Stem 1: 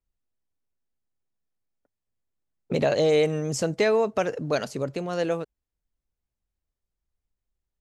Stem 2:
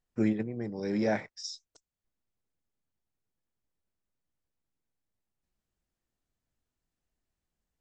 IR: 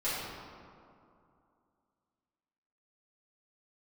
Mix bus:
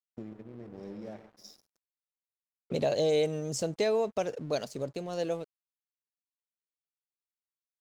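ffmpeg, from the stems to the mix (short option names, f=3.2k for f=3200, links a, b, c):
-filter_complex "[0:a]volume=-6.5dB[a];[1:a]highshelf=f=2.3k:g=-10.5,acompressor=threshold=-36dB:ratio=8,volume=-4dB,asplit=3[b][c][d];[c]volume=-19dB[e];[d]volume=-11dB[f];[2:a]atrim=start_sample=2205[g];[e][g]afir=irnorm=-1:irlink=0[h];[f]aecho=0:1:138:1[i];[a][b][h][i]amix=inputs=4:normalize=0,firequalizer=gain_entry='entry(300,0);entry(630,2);entry(1400,-7);entry(3600,3)':delay=0.05:min_phase=1,aeval=exprs='sgn(val(0))*max(abs(val(0))-0.00188,0)':c=same"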